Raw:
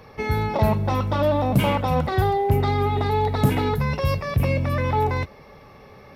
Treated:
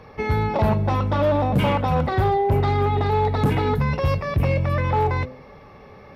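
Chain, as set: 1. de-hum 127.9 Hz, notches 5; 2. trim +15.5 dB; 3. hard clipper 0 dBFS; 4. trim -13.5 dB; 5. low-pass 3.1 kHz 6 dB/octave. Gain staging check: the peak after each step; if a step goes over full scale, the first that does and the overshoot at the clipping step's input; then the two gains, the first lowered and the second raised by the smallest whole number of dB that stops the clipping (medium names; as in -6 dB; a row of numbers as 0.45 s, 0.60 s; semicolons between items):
-6.5 dBFS, +9.0 dBFS, 0.0 dBFS, -13.5 dBFS, -13.5 dBFS; step 2, 9.0 dB; step 2 +6.5 dB, step 4 -4.5 dB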